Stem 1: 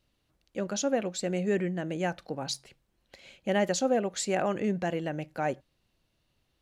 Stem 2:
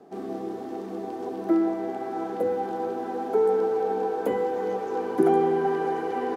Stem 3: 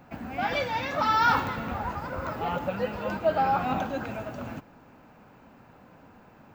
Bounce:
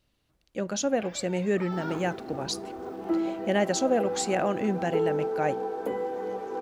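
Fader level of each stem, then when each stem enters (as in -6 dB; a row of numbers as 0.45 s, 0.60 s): +1.5 dB, -5.0 dB, -17.5 dB; 0.00 s, 1.60 s, 0.60 s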